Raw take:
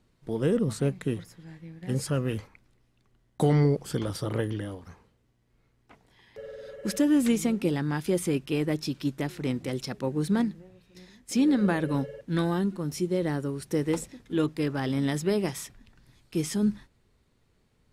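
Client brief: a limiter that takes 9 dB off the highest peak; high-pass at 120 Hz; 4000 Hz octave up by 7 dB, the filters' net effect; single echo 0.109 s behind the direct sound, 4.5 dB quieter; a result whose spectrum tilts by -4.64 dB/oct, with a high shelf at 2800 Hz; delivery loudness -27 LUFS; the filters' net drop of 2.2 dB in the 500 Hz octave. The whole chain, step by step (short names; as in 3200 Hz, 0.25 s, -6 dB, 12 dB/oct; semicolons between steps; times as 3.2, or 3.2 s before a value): HPF 120 Hz; bell 500 Hz -3 dB; high shelf 2800 Hz +5.5 dB; bell 4000 Hz +4.5 dB; limiter -21.5 dBFS; echo 0.109 s -4.5 dB; gain +4 dB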